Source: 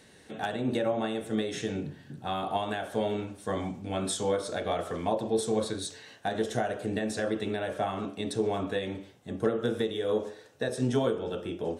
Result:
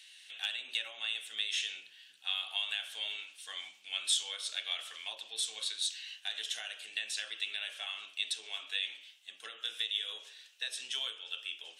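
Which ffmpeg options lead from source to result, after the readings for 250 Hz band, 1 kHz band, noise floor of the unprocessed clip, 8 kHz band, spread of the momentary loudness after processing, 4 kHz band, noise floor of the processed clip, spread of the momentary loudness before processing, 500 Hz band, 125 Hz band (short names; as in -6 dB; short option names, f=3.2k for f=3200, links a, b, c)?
under -40 dB, -20.0 dB, -55 dBFS, +1.0 dB, 10 LU, +8.0 dB, -60 dBFS, 7 LU, -30.0 dB, under -40 dB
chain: -af "highpass=f=2.9k:t=q:w=3.5"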